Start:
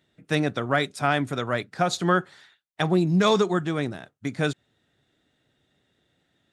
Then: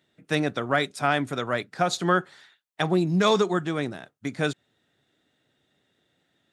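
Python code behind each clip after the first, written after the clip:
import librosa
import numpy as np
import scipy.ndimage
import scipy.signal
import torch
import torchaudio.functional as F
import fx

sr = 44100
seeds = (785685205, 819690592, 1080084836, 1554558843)

y = fx.highpass(x, sr, hz=150.0, slope=6)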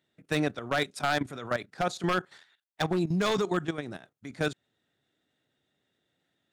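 y = 10.0 ** (-14.5 / 20.0) * (np.abs((x / 10.0 ** (-14.5 / 20.0) + 3.0) % 4.0 - 2.0) - 1.0)
y = fx.level_steps(y, sr, step_db=13)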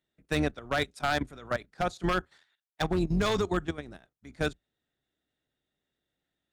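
y = fx.octave_divider(x, sr, octaves=2, level_db=-5.0)
y = fx.upward_expand(y, sr, threshold_db=-40.0, expansion=1.5)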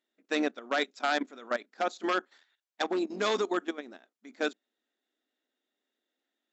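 y = fx.brickwall_bandpass(x, sr, low_hz=210.0, high_hz=7800.0)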